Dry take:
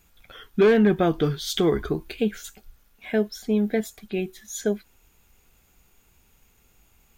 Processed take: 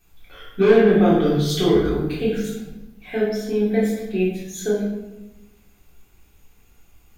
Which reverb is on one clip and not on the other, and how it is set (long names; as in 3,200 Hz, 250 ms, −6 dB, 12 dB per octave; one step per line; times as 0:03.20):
rectangular room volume 430 cubic metres, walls mixed, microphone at 3.6 metres
level −6.5 dB